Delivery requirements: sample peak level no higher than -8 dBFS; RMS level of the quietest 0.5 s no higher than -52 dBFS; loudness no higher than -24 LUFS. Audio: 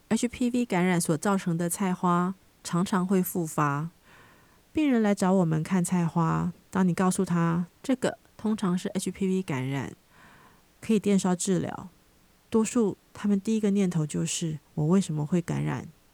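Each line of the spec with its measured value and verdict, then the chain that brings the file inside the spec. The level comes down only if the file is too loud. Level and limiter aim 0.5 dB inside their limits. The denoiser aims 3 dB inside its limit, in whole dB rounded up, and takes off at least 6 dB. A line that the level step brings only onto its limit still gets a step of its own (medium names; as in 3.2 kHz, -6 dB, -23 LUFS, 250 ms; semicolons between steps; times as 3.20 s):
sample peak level -13.0 dBFS: pass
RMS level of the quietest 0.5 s -61 dBFS: pass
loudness -27.0 LUFS: pass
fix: none needed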